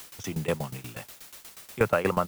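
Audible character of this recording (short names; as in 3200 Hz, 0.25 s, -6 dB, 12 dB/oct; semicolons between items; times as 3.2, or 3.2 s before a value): a quantiser's noise floor 8-bit, dither triangular; tremolo saw down 8.3 Hz, depth 90%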